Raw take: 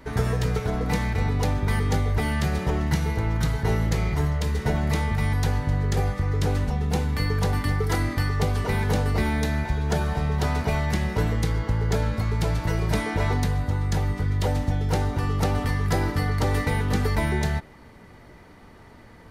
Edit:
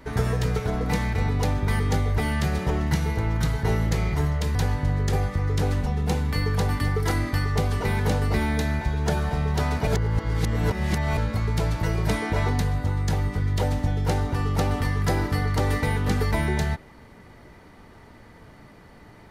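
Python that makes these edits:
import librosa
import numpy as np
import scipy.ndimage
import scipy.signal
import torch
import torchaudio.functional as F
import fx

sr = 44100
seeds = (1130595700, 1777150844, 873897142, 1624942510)

y = fx.edit(x, sr, fx.cut(start_s=4.55, length_s=0.84),
    fx.reverse_span(start_s=10.71, length_s=1.3), tone=tone)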